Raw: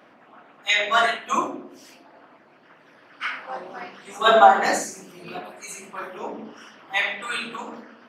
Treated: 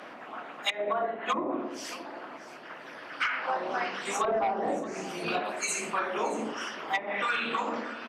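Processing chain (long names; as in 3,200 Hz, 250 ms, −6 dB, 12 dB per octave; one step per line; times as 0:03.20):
treble cut that deepens with the level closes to 480 Hz, closed at −19 dBFS
low-shelf EQ 190 Hz −11.5 dB
in parallel at −11.5 dB: sine wavefolder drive 9 dB, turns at −10.5 dBFS
on the sum: downward compressor 6 to 1, threshold −29 dBFS, peak gain reduction 12.5 dB
on a send: single-tap delay 625 ms −16.5 dB
on the sum: level +2.5 dB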